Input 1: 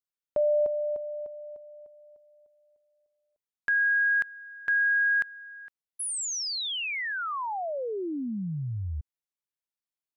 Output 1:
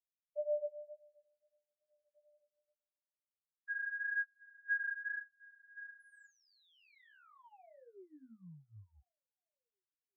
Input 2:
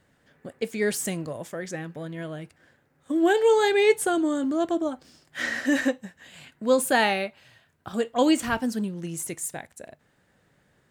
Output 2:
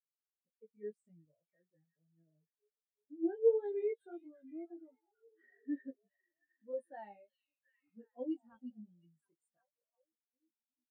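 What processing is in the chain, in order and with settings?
chorus 1.9 Hz, delay 17 ms, depth 3 ms; delay with a stepping band-pass 0.357 s, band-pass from 3700 Hz, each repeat -0.7 oct, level -3 dB; spectral expander 2.5:1; gain -8 dB

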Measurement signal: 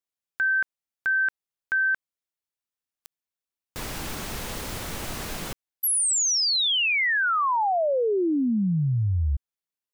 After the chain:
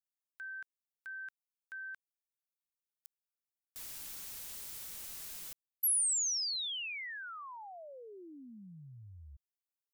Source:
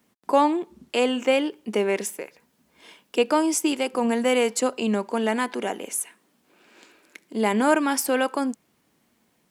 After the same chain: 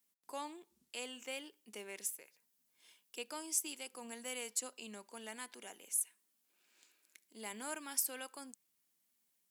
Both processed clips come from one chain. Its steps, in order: pre-emphasis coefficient 0.9; gain -8.5 dB

